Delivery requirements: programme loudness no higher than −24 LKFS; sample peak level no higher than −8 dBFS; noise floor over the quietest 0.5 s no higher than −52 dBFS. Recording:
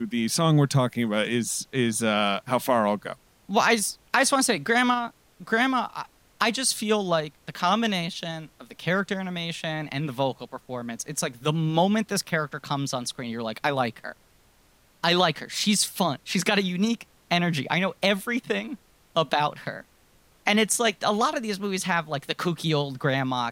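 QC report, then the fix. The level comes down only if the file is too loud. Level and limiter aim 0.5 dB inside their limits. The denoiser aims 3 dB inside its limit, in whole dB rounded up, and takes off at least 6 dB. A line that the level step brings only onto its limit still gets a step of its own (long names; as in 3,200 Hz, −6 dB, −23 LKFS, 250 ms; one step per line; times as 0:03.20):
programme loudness −25.0 LKFS: in spec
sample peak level −5.0 dBFS: out of spec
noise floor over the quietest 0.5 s −60 dBFS: in spec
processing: brickwall limiter −8.5 dBFS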